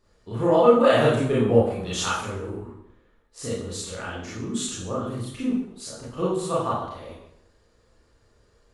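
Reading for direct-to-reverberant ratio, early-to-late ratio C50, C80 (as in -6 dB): -8.0 dB, 0.0 dB, 5.0 dB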